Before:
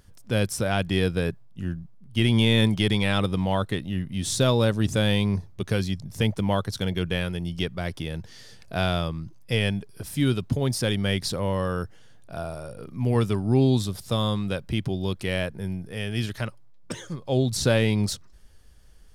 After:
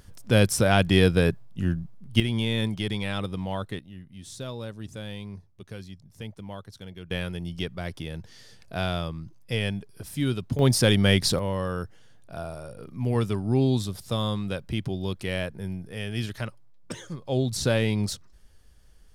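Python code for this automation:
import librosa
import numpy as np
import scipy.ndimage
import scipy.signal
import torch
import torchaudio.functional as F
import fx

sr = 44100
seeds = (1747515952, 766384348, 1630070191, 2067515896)

y = fx.gain(x, sr, db=fx.steps((0.0, 4.5), (2.2, -6.5), (3.79, -15.0), (7.11, -3.5), (10.59, 5.0), (11.39, -2.5)))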